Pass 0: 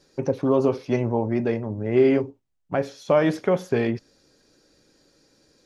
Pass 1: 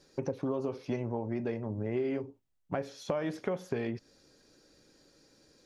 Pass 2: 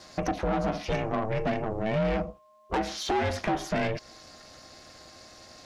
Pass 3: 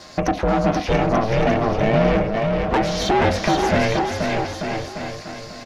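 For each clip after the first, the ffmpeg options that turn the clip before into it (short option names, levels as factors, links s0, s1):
-af "acompressor=threshold=0.0398:ratio=5,volume=0.75"
-filter_complex "[0:a]asplit=2[s0][s1];[s1]highpass=f=720:p=1,volume=17.8,asoftclip=type=tanh:threshold=0.158[s2];[s0][s2]amix=inputs=2:normalize=0,lowpass=f=5200:p=1,volume=0.501,aeval=exprs='val(0)+0.002*sin(2*PI*840*n/s)':c=same,aeval=exprs='val(0)*sin(2*PI*220*n/s)':c=same,volume=1.12"
-filter_complex "[0:a]equalizer=f=9400:t=o:w=0.97:g=-4,asplit=2[s0][s1];[s1]aecho=0:1:480|888|1235|1530|1780:0.631|0.398|0.251|0.158|0.1[s2];[s0][s2]amix=inputs=2:normalize=0,volume=2.66"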